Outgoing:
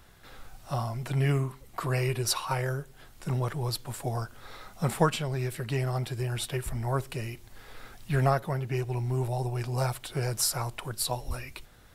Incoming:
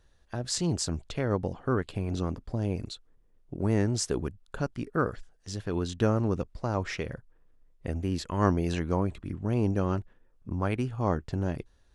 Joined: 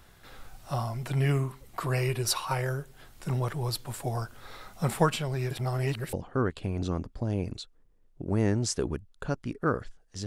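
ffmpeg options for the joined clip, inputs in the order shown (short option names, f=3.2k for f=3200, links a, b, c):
-filter_complex "[0:a]apad=whole_dur=10.26,atrim=end=10.26,asplit=2[a][b];[a]atrim=end=5.512[c];[b]atrim=start=5.508:end=6.132,asetpts=PTS-STARTPTS,areverse[d];[1:a]atrim=start=1.448:end=5.58[e];[c][d]acrossfade=d=0.004:c1=hsin:c2=hsin[f];[f][e]acrossfade=d=0.004:c1=hsin:c2=hsin"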